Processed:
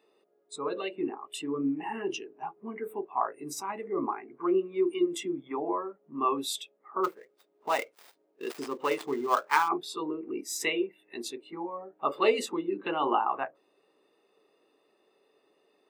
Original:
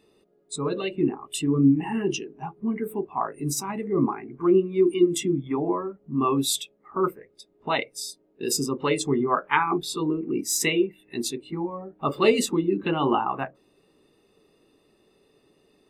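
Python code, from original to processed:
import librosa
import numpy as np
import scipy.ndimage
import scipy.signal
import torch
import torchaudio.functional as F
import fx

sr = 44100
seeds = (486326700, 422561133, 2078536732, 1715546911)

y = fx.dead_time(x, sr, dead_ms=0.1, at=(7.03, 9.67), fade=0.02)
y = scipy.signal.sosfilt(scipy.signal.butter(2, 510.0, 'highpass', fs=sr, output='sos'), y)
y = fx.peak_eq(y, sr, hz=11000.0, db=-11.0, octaves=2.8)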